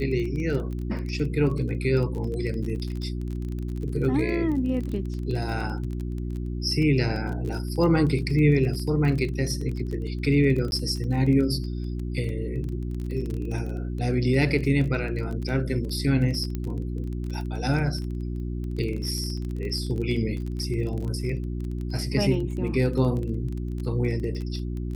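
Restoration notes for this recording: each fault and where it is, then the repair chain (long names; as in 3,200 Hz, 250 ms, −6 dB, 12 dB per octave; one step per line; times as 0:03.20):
surface crackle 24 per second −31 dBFS
mains hum 60 Hz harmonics 6 −30 dBFS
0:10.71–0:10.72: drop-out 11 ms
0:16.55: click −18 dBFS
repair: click removal
hum removal 60 Hz, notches 6
repair the gap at 0:10.71, 11 ms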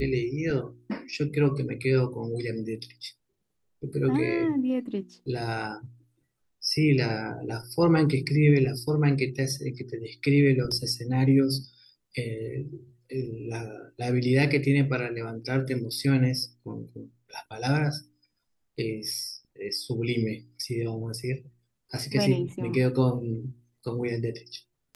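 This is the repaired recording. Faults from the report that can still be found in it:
none of them is left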